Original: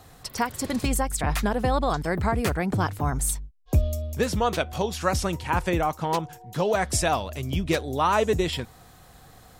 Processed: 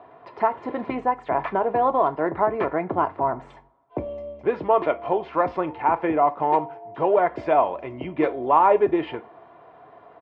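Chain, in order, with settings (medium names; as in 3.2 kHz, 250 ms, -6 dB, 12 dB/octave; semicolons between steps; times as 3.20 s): in parallel at -8.5 dB: saturation -24.5 dBFS, distortion -9 dB; on the sum: cabinet simulation 290–2200 Hz, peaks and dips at 580 Hz +6 dB, 980 Hz +8 dB, 1.7 kHz -6 dB; tape speed -6%; comb 2.9 ms, depth 36%; two-slope reverb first 0.28 s, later 2.2 s, from -28 dB, DRR 11 dB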